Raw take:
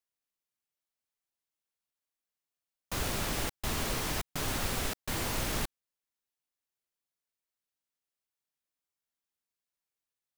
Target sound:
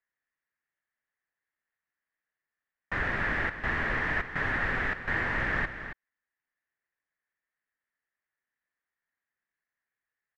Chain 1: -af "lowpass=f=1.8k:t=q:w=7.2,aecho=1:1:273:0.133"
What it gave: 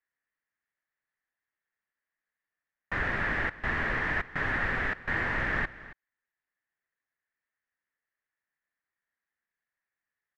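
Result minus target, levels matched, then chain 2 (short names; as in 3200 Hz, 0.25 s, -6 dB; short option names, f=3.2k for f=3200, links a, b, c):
echo-to-direct -7 dB
-af "lowpass=f=1.8k:t=q:w=7.2,aecho=1:1:273:0.299"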